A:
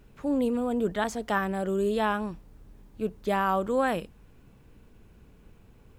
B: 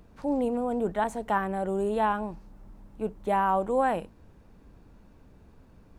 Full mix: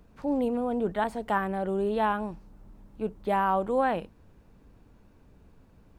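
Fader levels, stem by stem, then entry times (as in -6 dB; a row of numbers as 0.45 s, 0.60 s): -11.0 dB, -3.0 dB; 0.00 s, 0.00 s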